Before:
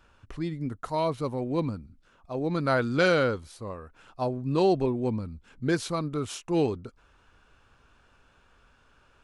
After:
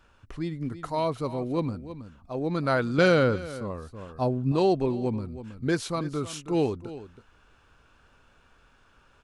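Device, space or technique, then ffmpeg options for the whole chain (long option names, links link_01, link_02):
ducked delay: -filter_complex "[0:a]asplit=3[link_01][link_02][link_03];[link_02]adelay=322,volume=-5dB[link_04];[link_03]apad=whole_len=421585[link_05];[link_04][link_05]sidechaincompress=threshold=-35dB:ratio=10:attack=29:release=833[link_06];[link_01][link_06]amix=inputs=2:normalize=0,asettb=1/sr,asplit=3[link_07][link_08][link_09];[link_07]atrim=end=2.984[link_10];[link_08]atrim=start=2.98:end=4.52,asetpts=PTS-STARTPTS,afade=type=in:duration=0.004:curve=qsin,afade=type=out:start_time=1.536:duration=0.004:curve=qsin,equalizer=frequency=140:width=0.38:gain=5.5[link_11];[link_09]atrim=start=4.516[link_12];[link_10][link_11]acrossfade=duration=0.004:curve1=hsin:curve2=qsin[link_13];[link_13][link_12]acrossfade=duration=0.004:curve1=qsin:curve2=hsin"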